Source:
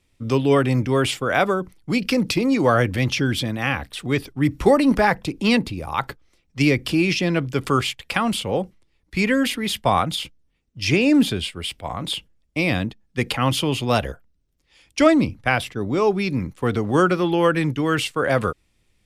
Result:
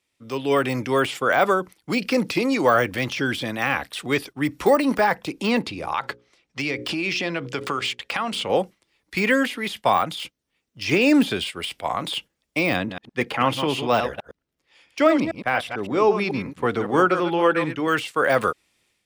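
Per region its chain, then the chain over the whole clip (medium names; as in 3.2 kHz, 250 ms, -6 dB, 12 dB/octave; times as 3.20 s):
5.62–8.50 s: hum notches 60/120/180/240/300/360/420/480/540 Hz + compression 10:1, threshold -23 dBFS + distance through air 60 m
12.76–17.88 s: chunks repeated in reverse 111 ms, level -8 dB + treble shelf 3.6 kHz -11.5 dB
whole clip: de-esser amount 80%; high-pass 580 Hz 6 dB/octave; level rider gain up to 11.5 dB; trim -4.5 dB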